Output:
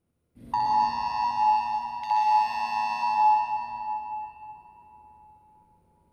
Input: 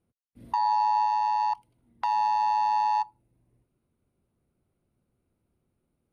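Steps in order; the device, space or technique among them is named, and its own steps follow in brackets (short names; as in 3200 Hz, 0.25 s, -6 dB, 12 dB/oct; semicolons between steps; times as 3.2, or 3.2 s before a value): 1.24–2.11 elliptic band-stop 150–2200 Hz; tunnel (flutter echo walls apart 11 m, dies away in 1.3 s; reverb RT60 3.8 s, pre-delay 0.107 s, DRR -4 dB)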